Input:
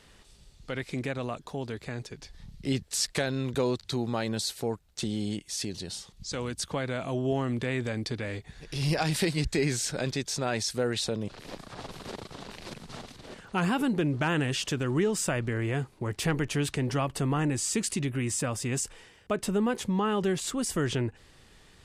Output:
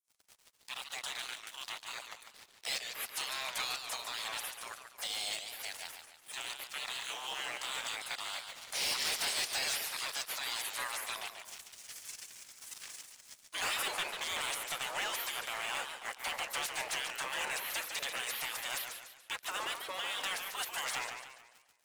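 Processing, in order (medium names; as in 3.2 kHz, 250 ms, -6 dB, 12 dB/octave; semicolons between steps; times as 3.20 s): spectral gate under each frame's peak -25 dB weak; high-pass 520 Hz 12 dB/octave; waveshaping leveller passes 5; modulated delay 144 ms, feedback 43%, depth 201 cents, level -7 dB; trim -6.5 dB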